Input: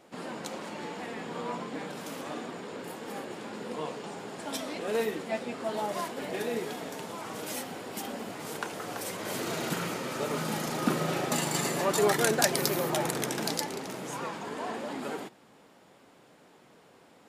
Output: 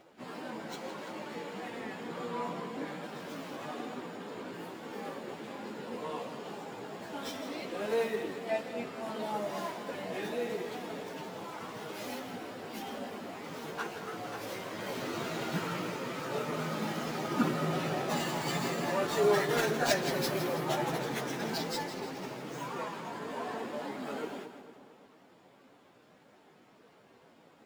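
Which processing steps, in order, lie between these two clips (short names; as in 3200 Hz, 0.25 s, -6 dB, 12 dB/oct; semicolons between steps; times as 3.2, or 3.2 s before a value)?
median filter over 5 samples; plain phase-vocoder stretch 1.6×; split-band echo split 1300 Hz, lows 0.226 s, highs 0.163 s, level -11 dB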